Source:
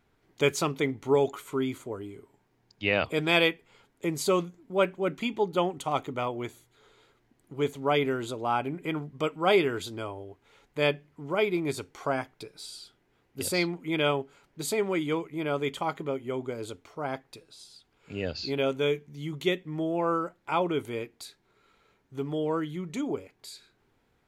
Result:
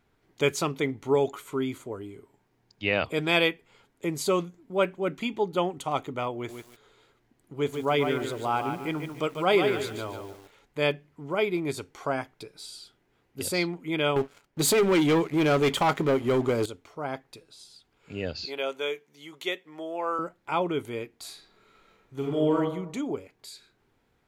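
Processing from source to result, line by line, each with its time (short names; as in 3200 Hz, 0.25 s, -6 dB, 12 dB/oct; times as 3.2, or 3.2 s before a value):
6.34–10.92 lo-fi delay 0.145 s, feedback 35%, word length 8-bit, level -6 dB
14.16–16.66 sample leveller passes 3
18.45–20.19 HPF 530 Hz
21.18–22.55 reverb throw, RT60 0.81 s, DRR -3 dB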